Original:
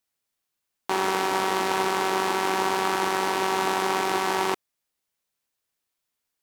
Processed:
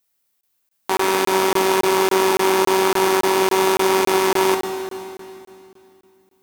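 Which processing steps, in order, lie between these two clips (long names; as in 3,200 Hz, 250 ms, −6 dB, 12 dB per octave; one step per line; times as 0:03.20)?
high-shelf EQ 11,000 Hz +10.5 dB
convolution reverb RT60 2.6 s, pre-delay 6 ms, DRR 4 dB
regular buffer underruns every 0.28 s, samples 1,024, zero, from 0:00.41
level +4.5 dB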